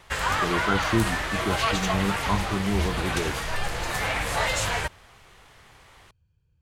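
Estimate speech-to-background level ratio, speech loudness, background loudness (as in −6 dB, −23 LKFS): −2.5 dB, −29.0 LKFS, −26.5 LKFS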